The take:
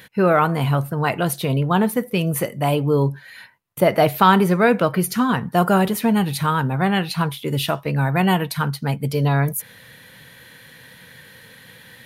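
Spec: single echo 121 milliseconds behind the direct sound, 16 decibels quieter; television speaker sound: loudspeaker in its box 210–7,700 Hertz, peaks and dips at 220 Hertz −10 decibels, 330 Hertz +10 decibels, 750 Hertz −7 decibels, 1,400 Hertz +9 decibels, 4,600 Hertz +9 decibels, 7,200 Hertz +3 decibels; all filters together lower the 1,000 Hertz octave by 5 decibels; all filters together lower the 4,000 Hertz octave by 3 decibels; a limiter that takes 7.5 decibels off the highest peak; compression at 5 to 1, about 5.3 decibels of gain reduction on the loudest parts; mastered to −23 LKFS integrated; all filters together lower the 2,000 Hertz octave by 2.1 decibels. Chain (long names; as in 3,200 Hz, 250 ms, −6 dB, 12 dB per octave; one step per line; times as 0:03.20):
parametric band 1,000 Hz −7.5 dB
parametric band 2,000 Hz −5 dB
parametric band 4,000 Hz −5.5 dB
downward compressor 5 to 1, threshold −19 dBFS
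brickwall limiter −17.5 dBFS
loudspeaker in its box 210–7,700 Hz, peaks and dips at 220 Hz −10 dB, 330 Hz +10 dB, 750 Hz −7 dB, 1,400 Hz +9 dB, 4,600 Hz +9 dB, 7,200 Hz +3 dB
single-tap delay 121 ms −16 dB
level +5 dB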